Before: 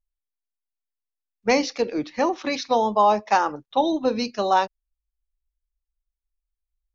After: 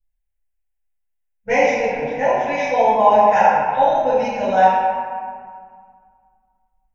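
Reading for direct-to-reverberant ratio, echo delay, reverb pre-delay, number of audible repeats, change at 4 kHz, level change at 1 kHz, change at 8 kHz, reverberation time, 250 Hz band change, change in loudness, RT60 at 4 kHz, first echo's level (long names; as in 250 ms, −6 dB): −18.0 dB, no echo audible, 4 ms, no echo audible, −4.5 dB, +7.0 dB, can't be measured, 2.0 s, −2.5 dB, +6.0 dB, 1.1 s, no echo audible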